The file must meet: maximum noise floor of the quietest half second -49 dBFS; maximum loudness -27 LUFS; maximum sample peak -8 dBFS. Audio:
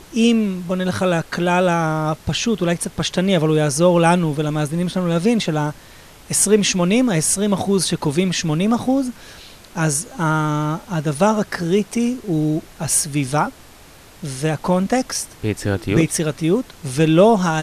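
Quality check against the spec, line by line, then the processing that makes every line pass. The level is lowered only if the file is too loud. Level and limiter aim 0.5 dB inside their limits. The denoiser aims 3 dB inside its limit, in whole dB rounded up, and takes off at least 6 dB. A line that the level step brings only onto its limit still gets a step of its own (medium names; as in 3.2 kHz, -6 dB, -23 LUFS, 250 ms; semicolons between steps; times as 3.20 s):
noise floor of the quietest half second -44 dBFS: fail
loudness -18.5 LUFS: fail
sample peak -2.5 dBFS: fail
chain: trim -9 dB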